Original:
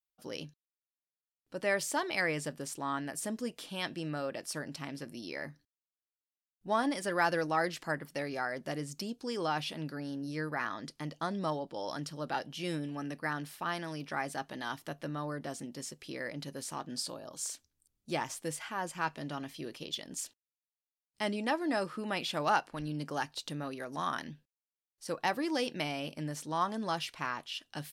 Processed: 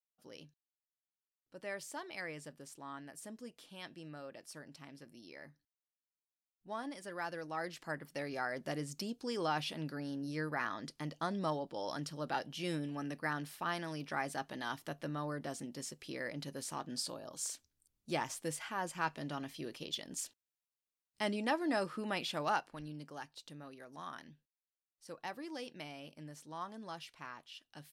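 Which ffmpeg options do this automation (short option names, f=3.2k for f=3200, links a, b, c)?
-af "volume=-2dB,afade=t=in:st=7.41:d=1.19:silence=0.316228,afade=t=out:st=22.04:d=1.07:silence=0.316228"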